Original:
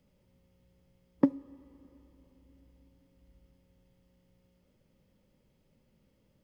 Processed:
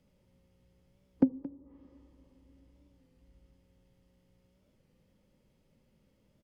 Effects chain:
treble cut that deepens with the level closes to 530 Hz, closed at −39 dBFS
single-tap delay 214 ms −18 dB
wow of a warped record 33 1/3 rpm, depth 100 cents

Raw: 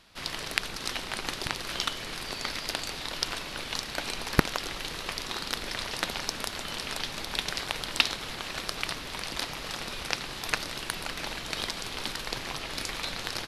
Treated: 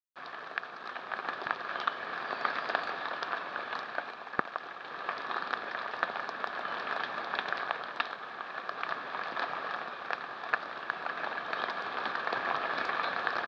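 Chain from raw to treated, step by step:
parametric band 1,700 Hz +12 dB 0.24 octaves
automatic gain control
bit-depth reduction 6 bits, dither none
loudspeaker in its box 300–3,100 Hz, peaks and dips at 310 Hz −4 dB, 710 Hz +6 dB, 1,200 Hz +9 dB, 2,000 Hz −9 dB, 2,900 Hz −9 dB
level −6.5 dB

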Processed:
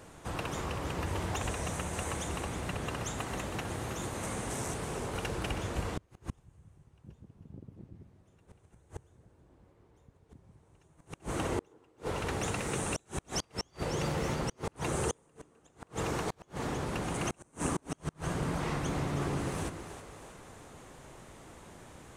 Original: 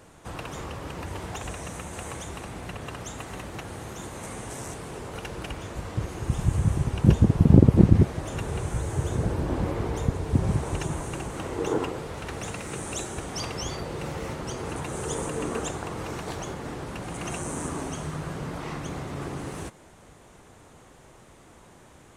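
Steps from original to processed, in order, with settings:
echo with a time of its own for lows and highs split 430 Hz, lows 139 ms, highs 320 ms, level −10 dB
gate with flip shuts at −21 dBFS, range −35 dB

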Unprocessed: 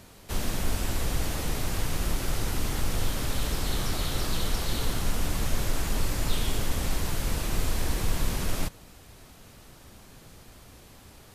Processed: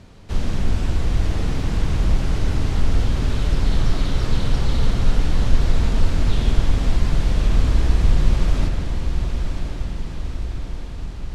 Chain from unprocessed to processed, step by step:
low-pass filter 5,500 Hz 12 dB per octave
low-shelf EQ 280 Hz +9.5 dB
feedback delay with all-pass diffusion 1,026 ms, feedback 61%, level −6.5 dB
spring reverb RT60 3.5 s, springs 49 ms, chirp 50 ms, DRR 6 dB

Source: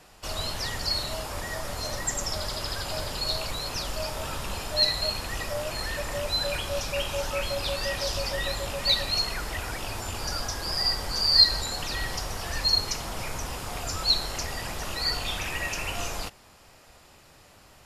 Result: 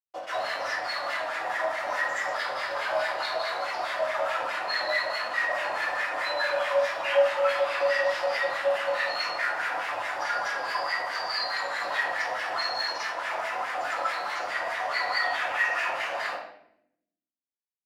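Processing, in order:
high-pass filter 140 Hz 6 dB per octave
low-shelf EQ 270 Hz −8.5 dB
in parallel at −1 dB: downward compressor, threshold −36 dBFS, peak gain reduction 21.5 dB
on the sum: bit reduction 5 bits
granular cloud, pitch spread up and down by 0 semitones
LFO wah 4.7 Hz 640–2,000 Hz, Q 4.9
convolution reverb RT60 0.75 s, pre-delay 3 ms, DRR −10.5 dB
level +3 dB

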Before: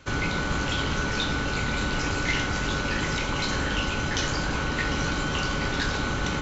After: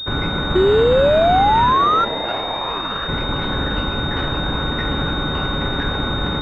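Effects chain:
0:01.71–0:03.07: ring modulation 350 Hz → 1,500 Hz
0:00.55–0:02.05: sound drawn into the spectrogram rise 360–1,400 Hz −20 dBFS
switching amplifier with a slow clock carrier 3,700 Hz
level +6 dB

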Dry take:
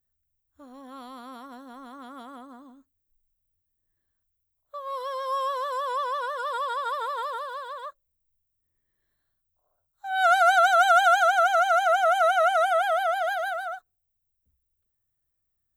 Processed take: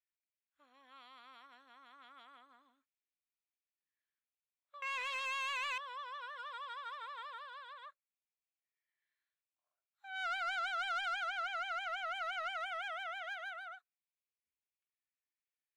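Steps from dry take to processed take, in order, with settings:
0:04.82–0:05.78: leveller curve on the samples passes 5
in parallel at −3 dB: downward compressor, threshold −33 dBFS, peak gain reduction 17 dB
on the sum: resonant band-pass 2,400 Hz, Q 3.7
soft clipping −29.5 dBFS, distortion −17 dB
level −3 dB

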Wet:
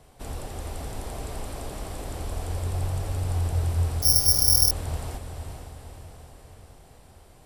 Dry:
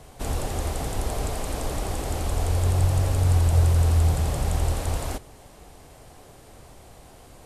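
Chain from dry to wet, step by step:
notch filter 6,600 Hz, Q 13
feedback delay with all-pass diffusion 463 ms, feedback 55%, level −6 dB
0:04.02–0:04.71: bad sample-rate conversion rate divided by 8×, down filtered, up zero stuff
level −7.5 dB

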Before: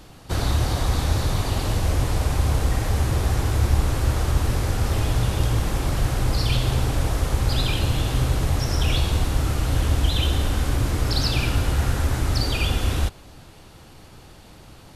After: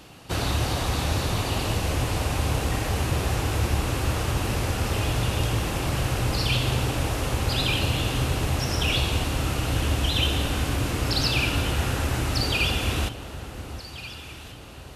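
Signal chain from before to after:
high-pass filter 110 Hz 6 dB per octave
parametric band 2,700 Hz +6.5 dB 0.36 octaves
delay that swaps between a low-pass and a high-pass 717 ms, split 1,200 Hz, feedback 66%, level −11 dB

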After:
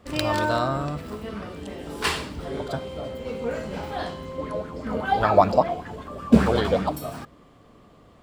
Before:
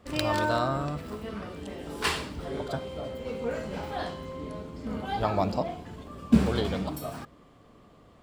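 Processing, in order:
0:04.38–0:06.92: auto-filter bell 5.1 Hz 490–1,700 Hz +13 dB
level +3 dB

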